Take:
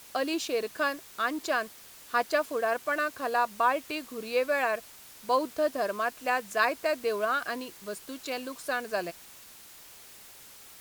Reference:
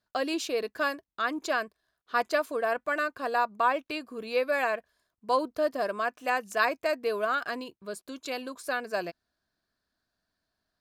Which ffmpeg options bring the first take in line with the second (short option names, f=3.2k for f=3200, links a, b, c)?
-af "afwtdn=0.0032"